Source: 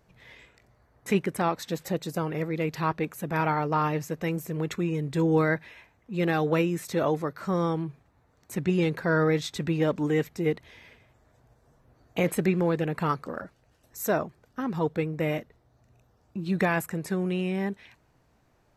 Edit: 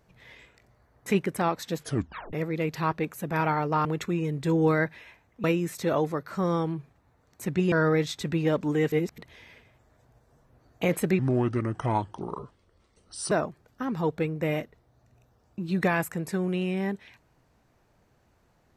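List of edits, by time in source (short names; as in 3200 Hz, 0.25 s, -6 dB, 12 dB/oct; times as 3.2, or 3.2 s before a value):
1.79 tape stop 0.54 s
3.85–4.55 cut
6.14–6.54 cut
8.82–9.07 cut
10.27–10.53 reverse
12.54–14.09 speed 73%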